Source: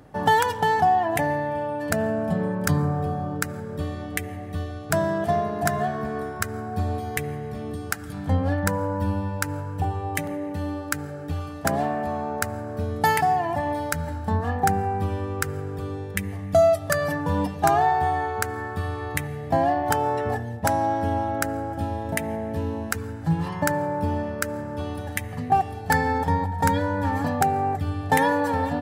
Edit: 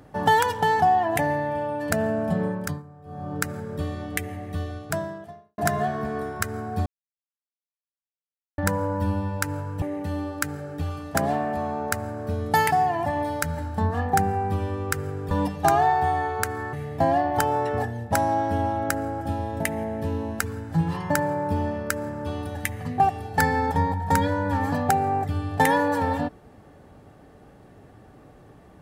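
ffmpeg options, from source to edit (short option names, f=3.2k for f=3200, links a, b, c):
-filter_complex "[0:a]asplit=9[a][b][c][d][e][f][g][h][i];[a]atrim=end=2.83,asetpts=PTS-STARTPTS,afade=t=out:st=2.46:d=0.37:silence=0.0794328[j];[b]atrim=start=2.83:end=3.04,asetpts=PTS-STARTPTS,volume=-22dB[k];[c]atrim=start=3.04:end=5.58,asetpts=PTS-STARTPTS,afade=t=in:d=0.37:silence=0.0794328,afade=t=out:st=1.7:d=0.84:c=qua[l];[d]atrim=start=5.58:end=6.86,asetpts=PTS-STARTPTS,afade=t=in:d=0.004:c=hsin,afade=t=out:st=1.276:d=0.004:c=hsin[m];[e]atrim=start=6.86:end=8.58,asetpts=PTS-STARTPTS,volume=0[n];[f]atrim=start=8.58:end=9.822,asetpts=PTS-STARTPTS,afade=t=in:d=0.004:c=hsin[o];[g]atrim=start=10.318:end=15.812[p];[h]atrim=start=17.298:end=18.722[q];[i]atrim=start=19.248[r];[j][k][l][m][n][o]concat=n=6:v=0:a=1[s];[s][p]acrossfade=d=0.004:c1=hsin:c2=hsin[t];[t][q]acrossfade=d=0.004:c1=hsin:c2=hsin[u];[u][r]acrossfade=d=0.004:c1=hsin:c2=hsin"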